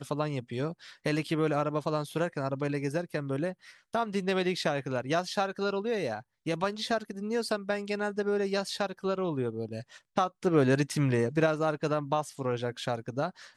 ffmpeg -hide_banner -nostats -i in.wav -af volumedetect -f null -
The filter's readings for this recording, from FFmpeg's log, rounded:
mean_volume: -30.5 dB
max_volume: -12.5 dB